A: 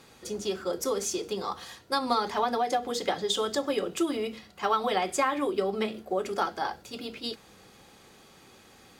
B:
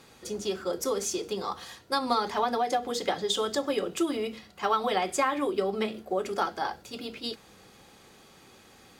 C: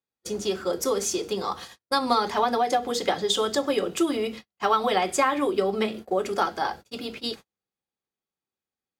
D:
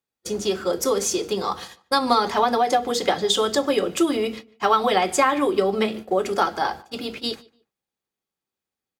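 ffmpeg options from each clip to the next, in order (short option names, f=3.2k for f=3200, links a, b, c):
-af anull
-af "agate=range=-44dB:threshold=-42dB:ratio=16:detection=peak,volume=4dB"
-filter_complex "[0:a]asplit=2[a][b];[b]adelay=147,lowpass=f=3k:p=1,volume=-23dB,asplit=2[c][d];[d]adelay=147,lowpass=f=3k:p=1,volume=0.27[e];[a][c][e]amix=inputs=3:normalize=0,volume=3.5dB"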